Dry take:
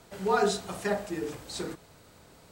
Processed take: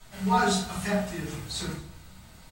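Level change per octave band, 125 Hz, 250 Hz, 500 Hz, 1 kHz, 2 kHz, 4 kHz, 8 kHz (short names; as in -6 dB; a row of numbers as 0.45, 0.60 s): +9.5, +6.0, -3.5, +4.0, +4.0, +5.0, +5.0 dB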